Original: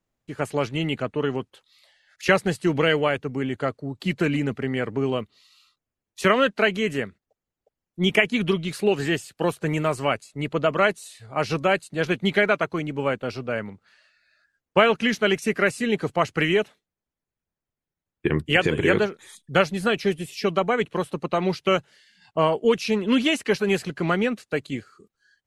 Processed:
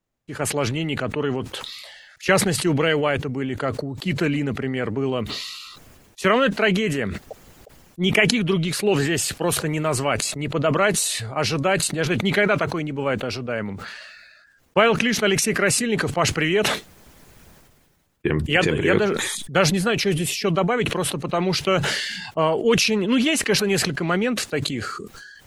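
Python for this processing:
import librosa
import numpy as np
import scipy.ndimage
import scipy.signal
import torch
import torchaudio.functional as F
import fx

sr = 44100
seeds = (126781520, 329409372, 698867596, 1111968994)

y = fx.sustainer(x, sr, db_per_s=33.0)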